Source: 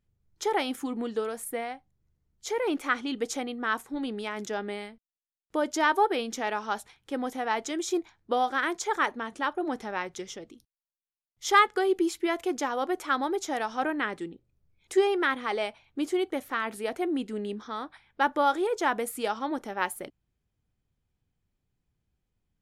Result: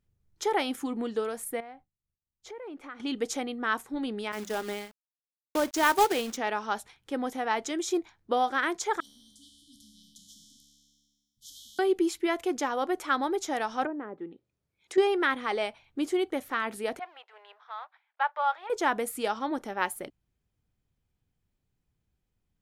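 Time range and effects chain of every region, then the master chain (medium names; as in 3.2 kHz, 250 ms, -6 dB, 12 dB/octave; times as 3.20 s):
1.60–3.00 s: low-pass 1.6 kHz 6 dB/octave + expander -60 dBFS + compression 2.5:1, threshold -45 dBFS
4.32–6.37 s: expander -36 dBFS + hum notches 50/100/150/200 Hz + companded quantiser 4-bit
9.00–11.79 s: brick-wall FIR band-stop 290–3000 Hz + feedback comb 71 Hz, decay 1.4 s, mix 90% + spectrum-flattening compressor 2:1
13.85–14.98 s: high-pass 330 Hz 6 dB/octave + low-pass that closes with the level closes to 610 Hz, closed at -30 dBFS
16.99–18.70 s: companding laws mixed up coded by A + steep high-pass 660 Hz + distance through air 320 m
whole clip: none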